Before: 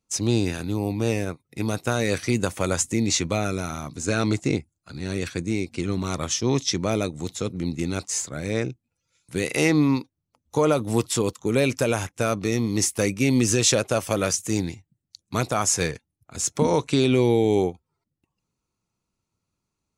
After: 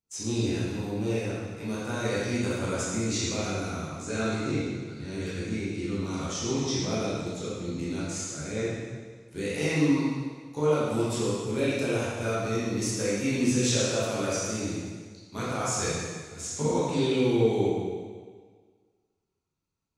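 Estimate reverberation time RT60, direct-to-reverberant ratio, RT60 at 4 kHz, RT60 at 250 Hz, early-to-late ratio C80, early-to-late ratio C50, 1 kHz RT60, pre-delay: 1.6 s, -9.0 dB, 1.5 s, 1.6 s, -0.5 dB, -3.5 dB, 1.6 s, 7 ms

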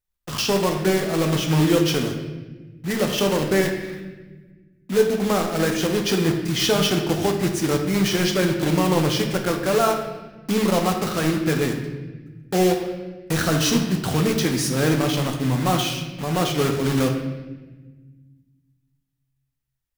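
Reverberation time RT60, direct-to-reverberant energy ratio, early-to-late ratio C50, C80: 1.3 s, 2.5 dB, 6.0 dB, 7.5 dB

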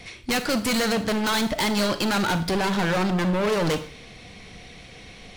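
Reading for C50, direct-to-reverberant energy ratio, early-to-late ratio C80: 12.5 dB, 10.0 dB, 16.5 dB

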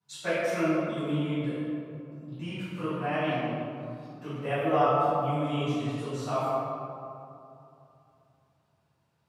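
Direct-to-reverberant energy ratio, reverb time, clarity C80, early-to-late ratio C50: -17.5 dB, 2.7 s, -2.0 dB, -4.5 dB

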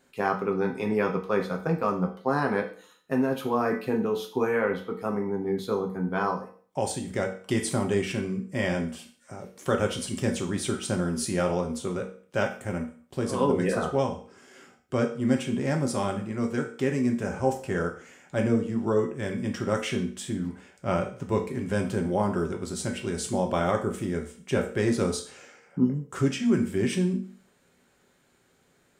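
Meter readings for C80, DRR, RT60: 14.0 dB, 2.0 dB, 0.45 s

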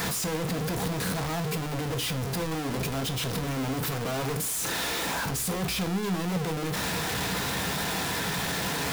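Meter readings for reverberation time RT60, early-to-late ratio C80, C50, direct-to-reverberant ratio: no single decay rate, 22.0 dB, 16.5 dB, 7.0 dB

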